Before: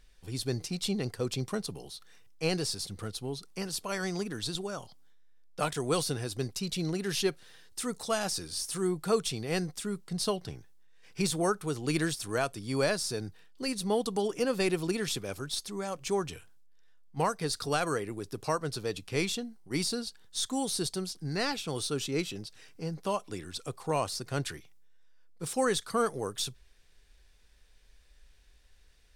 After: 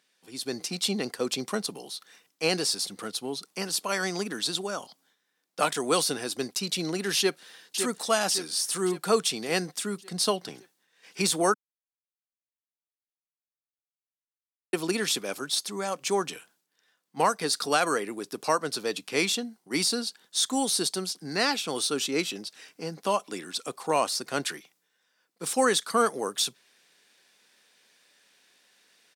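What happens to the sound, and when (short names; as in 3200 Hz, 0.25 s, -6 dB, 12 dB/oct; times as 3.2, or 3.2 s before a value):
7.18–7.79 echo throw 0.56 s, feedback 55%, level -7.5 dB
11.54–14.73 mute
whole clip: HPF 220 Hz 24 dB/oct; bell 390 Hz -4 dB 1.2 oct; AGC gain up to 8.5 dB; gain -1.5 dB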